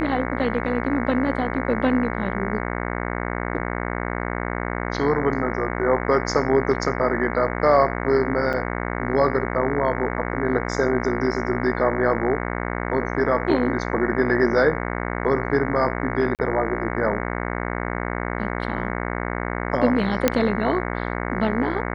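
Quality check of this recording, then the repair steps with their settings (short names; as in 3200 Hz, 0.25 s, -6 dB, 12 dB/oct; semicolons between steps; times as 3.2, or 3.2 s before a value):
buzz 60 Hz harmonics 37 -27 dBFS
8.53–8.54 gap 6.6 ms
16.35–16.39 gap 38 ms
20.28 pop -2 dBFS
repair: de-click; de-hum 60 Hz, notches 37; interpolate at 8.53, 6.6 ms; interpolate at 16.35, 38 ms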